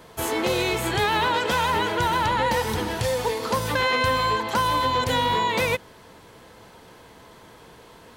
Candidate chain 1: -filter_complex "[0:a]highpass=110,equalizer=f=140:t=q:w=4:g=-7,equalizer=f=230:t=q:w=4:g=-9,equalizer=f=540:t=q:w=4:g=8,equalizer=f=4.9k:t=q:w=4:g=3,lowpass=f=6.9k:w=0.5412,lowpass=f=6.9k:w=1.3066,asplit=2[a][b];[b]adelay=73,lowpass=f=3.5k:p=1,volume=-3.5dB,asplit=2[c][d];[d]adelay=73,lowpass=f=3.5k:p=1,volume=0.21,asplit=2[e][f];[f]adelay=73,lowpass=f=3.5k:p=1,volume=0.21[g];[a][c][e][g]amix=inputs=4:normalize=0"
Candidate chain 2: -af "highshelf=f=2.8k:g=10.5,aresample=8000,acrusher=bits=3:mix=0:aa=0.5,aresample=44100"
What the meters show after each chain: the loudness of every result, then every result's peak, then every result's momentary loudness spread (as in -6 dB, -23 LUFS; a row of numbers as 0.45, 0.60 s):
-20.0, -20.5 LUFS; -7.5, -8.5 dBFS; 4, 6 LU